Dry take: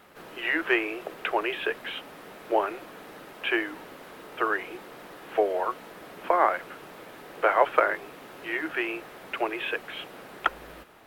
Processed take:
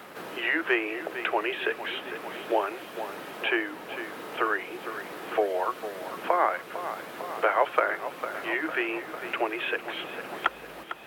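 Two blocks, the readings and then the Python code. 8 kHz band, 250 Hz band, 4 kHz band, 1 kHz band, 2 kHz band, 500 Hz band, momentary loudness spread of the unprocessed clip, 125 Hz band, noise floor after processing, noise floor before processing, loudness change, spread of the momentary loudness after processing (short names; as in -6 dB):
n/a, 0.0 dB, +1.0 dB, -1.0 dB, +0.5 dB, -0.5 dB, 21 LU, 0.0 dB, -44 dBFS, -47 dBFS, -1.5 dB, 11 LU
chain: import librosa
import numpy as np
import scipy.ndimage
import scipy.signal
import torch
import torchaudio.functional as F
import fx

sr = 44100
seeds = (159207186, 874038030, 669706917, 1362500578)

p1 = fx.highpass(x, sr, hz=110.0, slope=6)
p2 = p1 + fx.echo_feedback(p1, sr, ms=452, feedback_pct=58, wet_db=-14.5, dry=0)
y = fx.band_squash(p2, sr, depth_pct=40)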